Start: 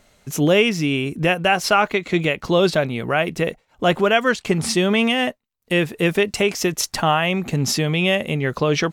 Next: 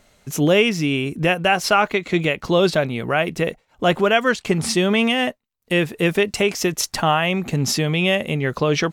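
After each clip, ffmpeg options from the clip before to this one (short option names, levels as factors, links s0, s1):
-af anull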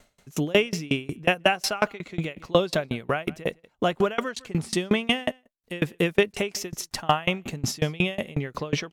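-af "aecho=1:1:158:0.0631,aeval=exprs='val(0)*pow(10,-28*if(lt(mod(5.5*n/s,1),2*abs(5.5)/1000),1-mod(5.5*n/s,1)/(2*abs(5.5)/1000),(mod(5.5*n/s,1)-2*abs(5.5)/1000)/(1-2*abs(5.5)/1000))/20)':c=same,volume=1.19"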